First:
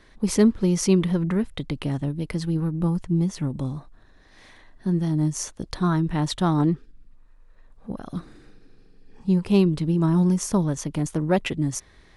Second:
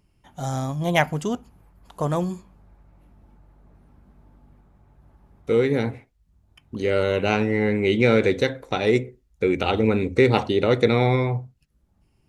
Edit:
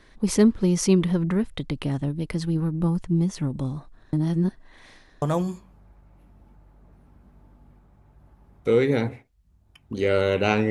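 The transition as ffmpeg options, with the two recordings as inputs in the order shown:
-filter_complex "[0:a]apad=whole_dur=10.7,atrim=end=10.7,asplit=2[s0][s1];[s0]atrim=end=4.132[s2];[s1]atrim=start=4.128:end=5.222,asetpts=PTS-STARTPTS,areverse[s3];[1:a]atrim=start=2.038:end=7.52[s4];[s2][s3]acrossfade=d=0.004:c1=hsin:c2=hsin[s5];[s5][s4]acrossfade=d=0.004:c1=hsin:c2=hsin"

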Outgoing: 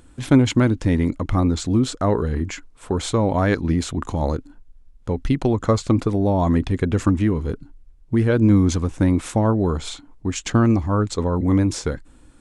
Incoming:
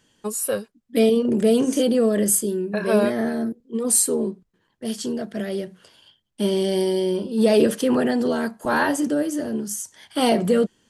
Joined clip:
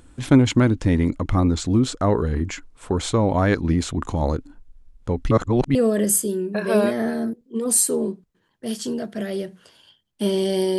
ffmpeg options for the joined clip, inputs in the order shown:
-filter_complex "[0:a]apad=whole_dur=10.78,atrim=end=10.78,asplit=2[s0][s1];[s0]atrim=end=5.312[s2];[s1]atrim=start=5.308:end=5.752,asetpts=PTS-STARTPTS,areverse[s3];[1:a]atrim=start=1.938:end=6.97[s4];[s2][s3]acrossfade=d=0.004:c1=hsin:c2=hsin[s5];[s5][s4]acrossfade=d=0.004:c1=hsin:c2=hsin"

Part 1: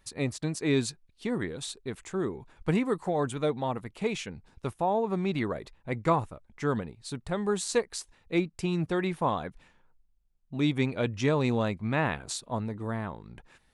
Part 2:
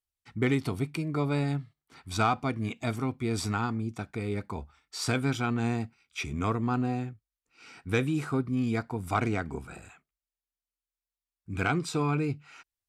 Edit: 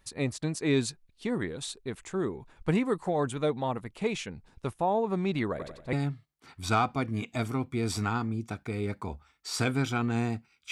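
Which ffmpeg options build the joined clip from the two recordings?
-filter_complex "[0:a]asettb=1/sr,asplit=3[s0][s1][s2];[s0]atrim=end=5.504[s3];[s1]atrim=start=5.5:end=5.93,asetpts=PTS-STARTPTS,afade=t=in:d=0.004:c=qsin,afade=t=out:st=0.426:d=0.004:c=qsin,aecho=1:1:91|182|273|364|455:0.473|0.208|0.0916|0.0403|0.0177,atrim=end_sample=18963[s4];[s2]atrim=start=5.926[s5];[s3][s4]acrossfade=d=0.004:c1=hsin:c2=qsin[s6];[s6][s5]acrossfade=d=0.004:c1=qsin:c2=hsin,apad=whole_dur=10.71,atrim=end=10.71,atrim=end=5.932[s7];[1:a]atrim=start=1.408:end=6.19[s8];[s7][s8]acrossfade=d=0.004:c1=hsin:c2=hsin"

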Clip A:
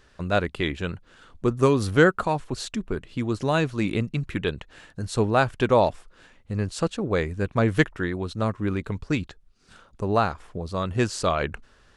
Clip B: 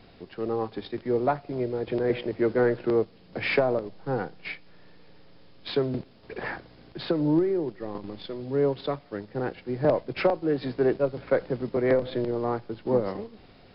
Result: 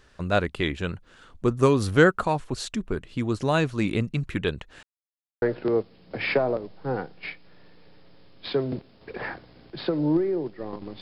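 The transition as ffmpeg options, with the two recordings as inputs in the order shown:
-filter_complex "[0:a]apad=whole_dur=11.01,atrim=end=11.01,asplit=2[s0][s1];[s0]atrim=end=4.83,asetpts=PTS-STARTPTS,afade=t=out:st=4.826:d=0.004:c=hsin[s2];[s1]atrim=start=4.83:end=5.42,asetpts=PTS-STARTPTS,volume=0[s3];[1:a]atrim=start=2.64:end=8.23,asetpts=PTS-STARTPTS,afade=t=in:d=0.004:c=hsin[s4];[s2][s3][s4]concat=n=3:v=0:a=1"

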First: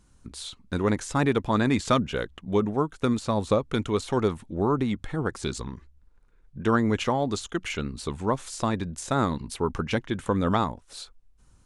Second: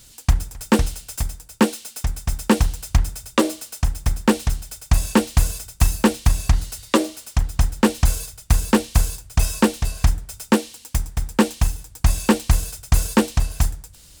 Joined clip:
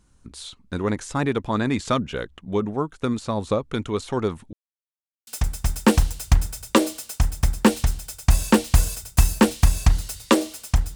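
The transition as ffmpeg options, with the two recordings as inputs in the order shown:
-filter_complex "[0:a]apad=whole_dur=10.95,atrim=end=10.95,asplit=2[s0][s1];[s0]atrim=end=4.53,asetpts=PTS-STARTPTS,afade=t=out:st=4.526:d=0.004:c=hsin[s2];[s1]atrim=start=4.53:end=5.27,asetpts=PTS-STARTPTS,volume=0[s3];[1:a]atrim=start=1.9:end=7.58,asetpts=PTS-STARTPTS,afade=t=in:d=0.004:c=hsin[s4];[s2][s3][s4]concat=n=3:v=0:a=1"

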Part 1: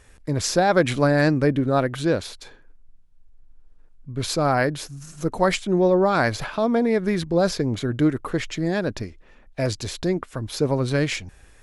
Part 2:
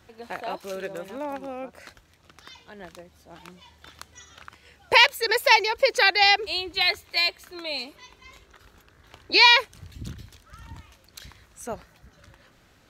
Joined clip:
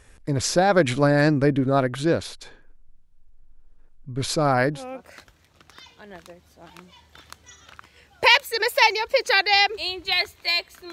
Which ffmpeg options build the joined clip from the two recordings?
-filter_complex "[0:a]apad=whole_dur=10.92,atrim=end=10.92,atrim=end=4.85,asetpts=PTS-STARTPTS[s0];[1:a]atrim=start=1.4:end=7.61,asetpts=PTS-STARTPTS[s1];[s0][s1]acrossfade=d=0.14:c1=tri:c2=tri"

